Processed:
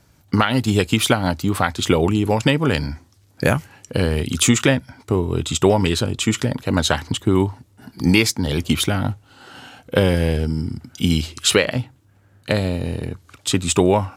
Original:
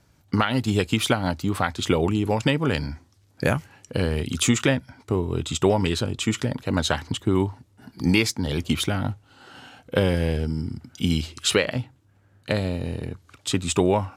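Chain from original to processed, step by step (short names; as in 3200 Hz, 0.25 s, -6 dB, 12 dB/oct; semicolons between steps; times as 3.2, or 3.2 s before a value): high shelf 10000 Hz +6 dB; gain +4.5 dB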